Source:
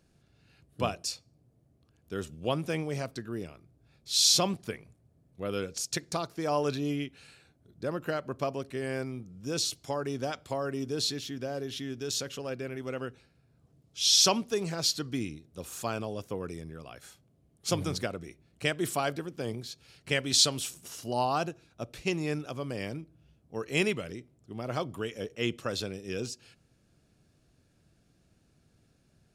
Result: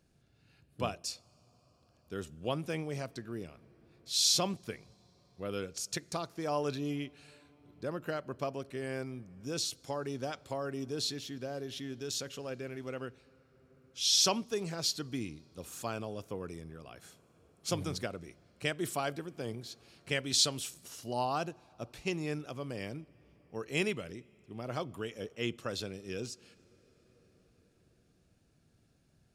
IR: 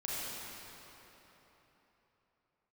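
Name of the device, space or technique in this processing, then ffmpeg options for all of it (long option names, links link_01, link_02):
ducked reverb: -filter_complex "[0:a]asplit=3[link_01][link_02][link_03];[1:a]atrim=start_sample=2205[link_04];[link_02][link_04]afir=irnorm=-1:irlink=0[link_05];[link_03]apad=whole_len=1294323[link_06];[link_05][link_06]sidechaincompress=threshold=-41dB:ratio=10:attack=6.7:release=1480,volume=-14dB[link_07];[link_01][link_07]amix=inputs=2:normalize=0,volume=-4.5dB"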